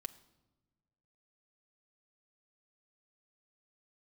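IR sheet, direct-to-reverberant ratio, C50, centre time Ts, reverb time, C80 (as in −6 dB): 7.0 dB, 17.0 dB, 4 ms, 1.1 s, 19.0 dB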